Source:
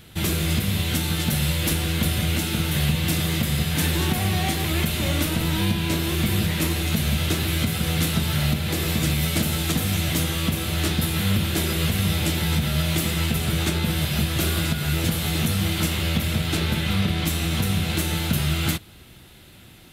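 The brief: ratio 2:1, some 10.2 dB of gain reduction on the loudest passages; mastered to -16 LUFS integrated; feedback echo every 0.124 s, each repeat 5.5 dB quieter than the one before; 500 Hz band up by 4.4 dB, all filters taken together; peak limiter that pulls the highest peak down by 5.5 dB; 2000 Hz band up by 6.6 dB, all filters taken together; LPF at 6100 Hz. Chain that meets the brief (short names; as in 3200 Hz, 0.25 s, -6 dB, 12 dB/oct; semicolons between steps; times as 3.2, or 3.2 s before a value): LPF 6100 Hz; bell 500 Hz +5.5 dB; bell 2000 Hz +8 dB; compressor 2:1, threshold -36 dBFS; limiter -23.5 dBFS; feedback echo 0.124 s, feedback 53%, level -5.5 dB; gain +15 dB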